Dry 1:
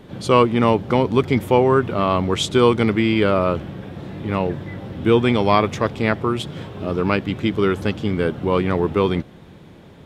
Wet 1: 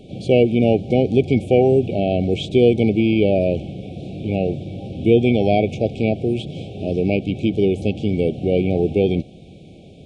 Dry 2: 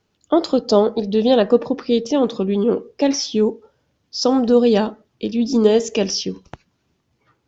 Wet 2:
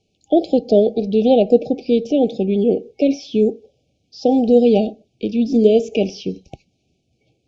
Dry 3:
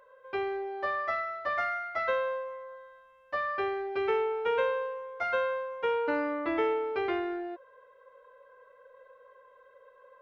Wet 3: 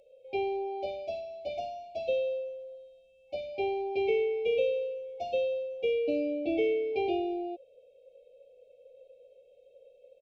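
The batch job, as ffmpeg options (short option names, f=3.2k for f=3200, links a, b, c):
-filter_complex "[0:a]acrossover=split=2900[a][b];[b]acompressor=threshold=-45dB:ratio=4:attack=1:release=60[c];[a][c]amix=inputs=2:normalize=0,aresample=22050,aresample=44100,afftfilt=real='re*(1-between(b*sr/4096,800,2200))':imag='im*(1-between(b*sr/4096,800,2200))':win_size=4096:overlap=0.75,volume=1.5dB"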